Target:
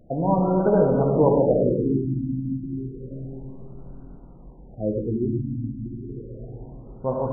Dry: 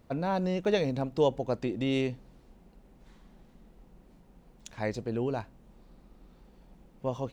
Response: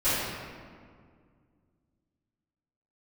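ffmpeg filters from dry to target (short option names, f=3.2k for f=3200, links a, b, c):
-filter_complex "[0:a]asplit=2[a][b];[1:a]atrim=start_sample=2205,asetrate=24696,aresample=44100[c];[b][c]afir=irnorm=-1:irlink=0,volume=-16dB[d];[a][d]amix=inputs=2:normalize=0,afftfilt=real='re*lt(b*sr/1024,320*pow(1600/320,0.5+0.5*sin(2*PI*0.31*pts/sr)))':imag='im*lt(b*sr/1024,320*pow(1600/320,0.5+0.5*sin(2*PI*0.31*pts/sr)))':win_size=1024:overlap=0.75,volume=4.5dB"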